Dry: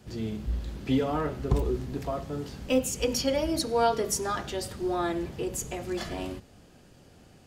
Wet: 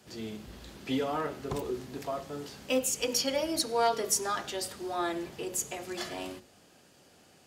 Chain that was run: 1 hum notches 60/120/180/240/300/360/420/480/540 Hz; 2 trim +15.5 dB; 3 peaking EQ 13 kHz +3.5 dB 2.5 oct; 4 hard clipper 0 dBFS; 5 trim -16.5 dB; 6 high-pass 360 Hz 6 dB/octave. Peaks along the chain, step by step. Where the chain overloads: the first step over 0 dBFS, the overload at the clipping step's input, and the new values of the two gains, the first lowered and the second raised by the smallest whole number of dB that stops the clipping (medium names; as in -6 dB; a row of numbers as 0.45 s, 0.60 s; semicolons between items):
-11.0 dBFS, +4.5 dBFS, +4.5 dBFS, 0.0 dBFS, -16.5 dBFS, -16.0 dBFS; step 2, 4.5 dB; step 2 +10.5 dB, step 5 -11.5 dB